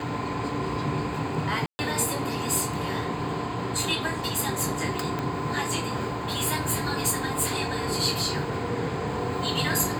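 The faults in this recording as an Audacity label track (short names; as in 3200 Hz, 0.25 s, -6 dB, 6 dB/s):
1.660000	1.790000	gap 0.13 s
5.190000	5.190000	pop -16 dBFS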